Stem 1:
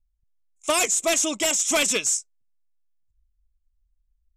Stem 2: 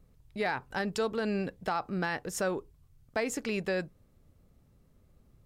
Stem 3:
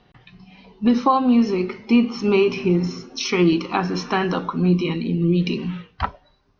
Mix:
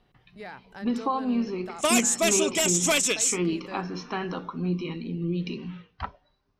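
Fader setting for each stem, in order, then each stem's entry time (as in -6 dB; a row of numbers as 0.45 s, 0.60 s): -1.5 dB, -10.0 dB, -10.0 dB; 1.15 s, 0.00 s, 0.00 s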